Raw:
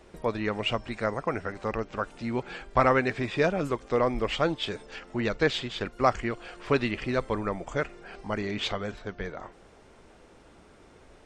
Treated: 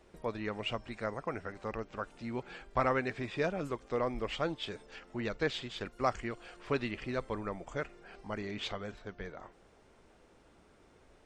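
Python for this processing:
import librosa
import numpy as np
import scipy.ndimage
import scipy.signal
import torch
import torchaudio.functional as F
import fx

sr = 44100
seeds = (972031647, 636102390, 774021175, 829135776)

y = fx.high_shelf(x, sr, hz=7800.0, db=7.0, at=(5.62, 6.57))
y = y * librosa.db_to_amplitude(-8.0)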